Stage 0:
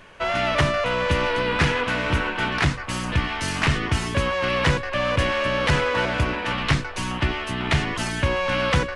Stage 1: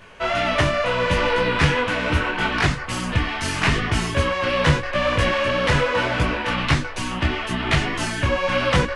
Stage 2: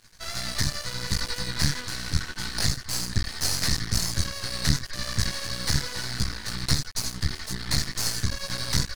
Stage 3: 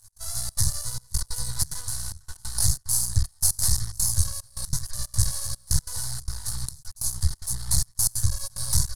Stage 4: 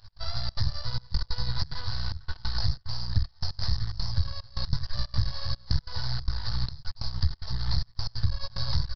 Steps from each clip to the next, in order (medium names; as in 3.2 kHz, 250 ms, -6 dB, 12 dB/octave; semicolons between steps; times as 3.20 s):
detune thickener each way 27 cents; trim +5.5 dB
FFT filter 130 Hz 0 dB, 580 Hz -24 dB, 1.9 kHz -5 dB, 2.8 kHz -21 dB, 4.3 kHz +13 dB, 9.3 kHz +8 dB; half-wave rectifier
FFT filter 110 Hz 0 dB, 260 Hz -25 dB, 910 Hz -7 dB, 2.4 kHz -24 dB, 11 kHz +11 dB, 15 kHz -5 dB; trance gate "x.xxxx.xxxxx.." 184 bpm -24 dB; trim +4.5 dB
compression 3:1, threshold -29 dBFS, peak gain reduction 12 dB; resampled via 11.025 kHz; trim +7.5 dB